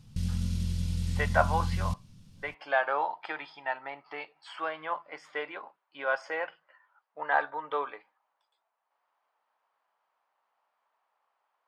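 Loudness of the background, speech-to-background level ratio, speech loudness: −32.5 LKFS, −0.5 dB, −33.0 LKFS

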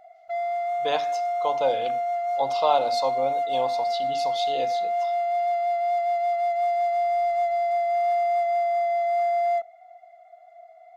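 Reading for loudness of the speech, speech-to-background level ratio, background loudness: −28.5 LKFS, −3.5 dB, −25.0 LKFS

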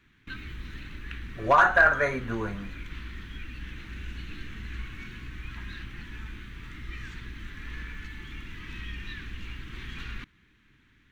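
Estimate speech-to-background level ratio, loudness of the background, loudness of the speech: 19.0 dB, −41.5 LKFS, −22.5 LKFS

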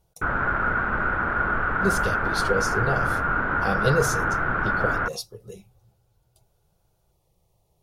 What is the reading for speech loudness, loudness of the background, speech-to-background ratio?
−29.0 LKFS, −24.0 LKFS, −5.0 dB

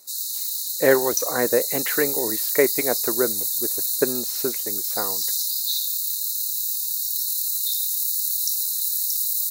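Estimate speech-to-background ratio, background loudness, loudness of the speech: −2.5 dB, −22.0 LKFS, −24.5 LKFS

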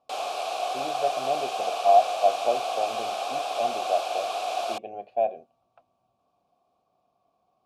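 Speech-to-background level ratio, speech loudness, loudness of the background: 3.0 dB, −27.0 LKFS, −30.0 LKFS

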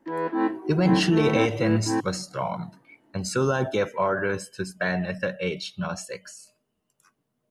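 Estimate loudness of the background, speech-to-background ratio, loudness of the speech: −28.0 LKFS, 2.0 dB, −26.0 LKFS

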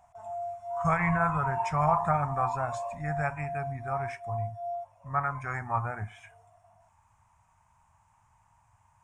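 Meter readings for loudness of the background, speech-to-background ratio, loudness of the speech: −37.5 LKFS, 7.0 dB, −30.5 LKFS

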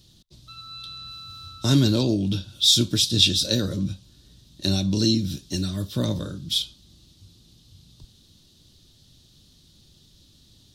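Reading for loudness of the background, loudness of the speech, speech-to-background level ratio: −39.0 LKFS, −22.0 LKFS, 17.0 dB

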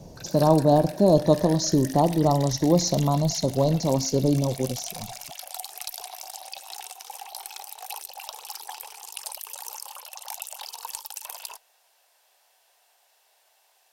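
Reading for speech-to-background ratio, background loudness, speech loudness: 15.5 dB, −37.5 LKFS, −22.0 LKFS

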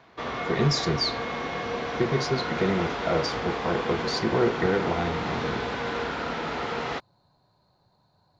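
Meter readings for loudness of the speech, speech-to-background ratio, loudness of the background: −27.5 LKFS, 3.0 dB, −30.5 LKFS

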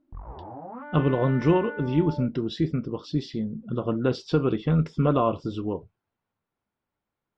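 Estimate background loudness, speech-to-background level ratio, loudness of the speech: −39.5 LKFS, 13.5 dB, −26.0 LKFS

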